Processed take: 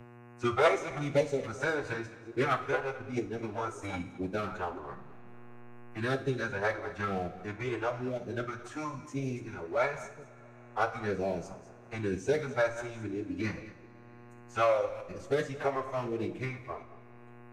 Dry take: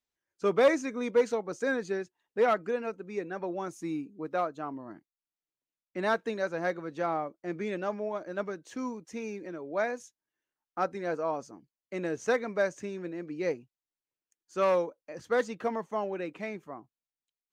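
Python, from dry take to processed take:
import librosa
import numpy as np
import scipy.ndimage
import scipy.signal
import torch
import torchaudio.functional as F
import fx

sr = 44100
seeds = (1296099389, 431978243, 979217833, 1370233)

p1 = fx.reverse_delay(x, sr, ms=165, wet_db=-13.5)
p2 = fx.peak_eq(p1, sr, hz=4600.0, db=-5.0, octaves=1.0)
p3 = fx.backlash(p2, sr, play_db=-29.5)
p4 = p2 + F.gain(torch.from_numpy(p3), -5.0).numpy()
p5 = fx.pitch_keep_formants(p4, sr, semitones=-9.0)
p6 = fx.phaser_stages(p5, sr, stages=2, low_hz=170.0, high_hz=1300.0, hz=1.0, feedback_pct=5)
p7 = fx.dmg_buzz(p6, sr, base_hz=120.0, harmonics=24, level_db=-58.0, tilt_db=-7, odd_only=False)
p8 = p7 + fx.echo_single(p7, sr, ms=213, db=-19.5, dry=0)
p9 = fx.rev_double_slope(p8, sr, seeds[0], early_s=0.47, late_s=2.7, knee_db=-22, drr_db=7.5)
y = fx.band_squash(p9, sr, depth_pct=40)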